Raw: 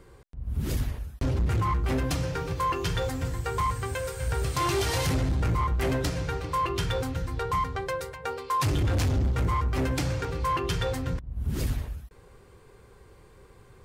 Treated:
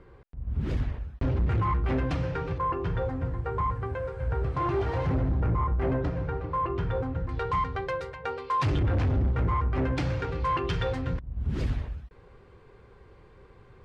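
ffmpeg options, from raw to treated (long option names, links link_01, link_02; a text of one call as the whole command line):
ffmpeg -i in.wav -af "asetnsamples=nb_out_samples=441:pad=0,asendcmd='2.58 lowpass f 1300;7.29 lowpass f 3300;8.79 lowpass f 2000;9.97 lowpass f 3300',lowpass=2500" out.wav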